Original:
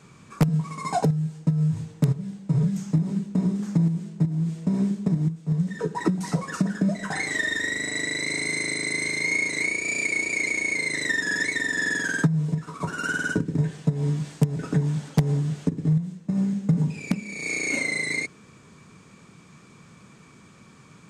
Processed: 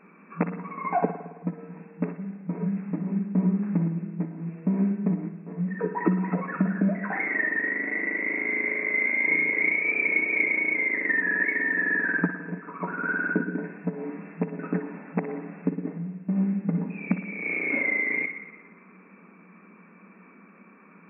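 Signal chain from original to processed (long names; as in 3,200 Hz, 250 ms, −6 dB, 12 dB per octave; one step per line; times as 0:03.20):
brick-wall band-pass 170–2,700 Hz
0:08.62–0:10.45: double-tracking delay 36 ms −6.5 dB
on a send: delay with a high-pass on its return 62 ms, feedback 58%, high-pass 1,400 Hz, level −7 dB
on the sum: spring reverb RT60 1.3 s, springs 54 ms, chirp 60 ms, DRR 11 dB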